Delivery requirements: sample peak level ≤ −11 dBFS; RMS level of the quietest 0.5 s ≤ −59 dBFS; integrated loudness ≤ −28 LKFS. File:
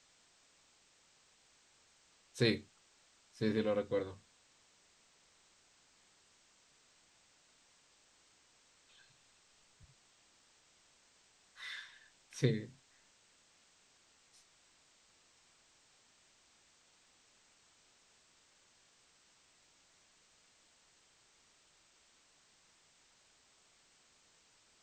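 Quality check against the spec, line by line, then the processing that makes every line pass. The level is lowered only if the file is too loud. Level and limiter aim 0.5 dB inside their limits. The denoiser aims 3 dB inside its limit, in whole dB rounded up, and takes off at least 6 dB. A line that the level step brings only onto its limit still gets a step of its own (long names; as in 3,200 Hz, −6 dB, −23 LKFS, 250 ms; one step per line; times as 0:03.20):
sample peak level −17.0 dBFS: in spec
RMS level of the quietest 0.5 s −69 dBFS: in spec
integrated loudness −37.5 LKFS: in spec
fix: no processing needed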